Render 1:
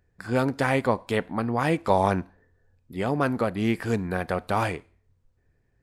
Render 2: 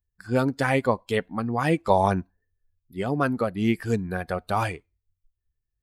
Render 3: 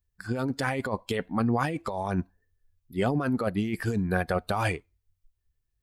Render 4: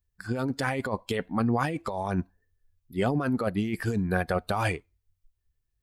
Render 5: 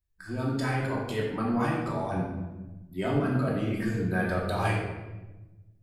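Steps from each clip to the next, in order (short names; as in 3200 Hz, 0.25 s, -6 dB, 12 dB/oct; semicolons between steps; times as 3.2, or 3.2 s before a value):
per-bin expansion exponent 1.5; gain +3 dB
negative-ratio compressor -27 dBFS, ratio -1
nothing audible
shoebox room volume 620 m³, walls mixed, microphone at 2.8 m; gain -8 dB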